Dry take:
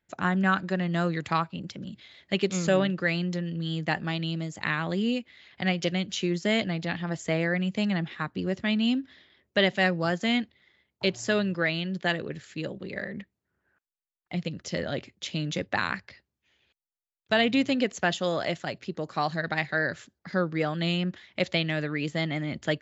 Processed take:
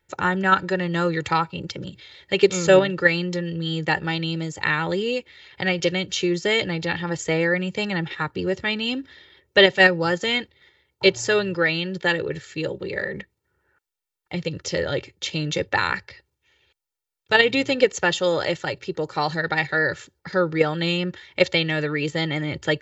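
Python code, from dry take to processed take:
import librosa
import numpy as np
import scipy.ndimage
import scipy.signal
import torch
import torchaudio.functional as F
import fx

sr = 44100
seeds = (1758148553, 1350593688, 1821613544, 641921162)

p1 = x + 0.73 * np.pad(x, (int(2.2 * sr / 1000.0), 0))[:len(x)]
p2 = fx.level_steps(p1, sr, step_db=21)
p3 = p1 + (p2 * librosa.db_to_amplitude(-2.0))
y = p3 * librosa.db_to_amplitude(3.5)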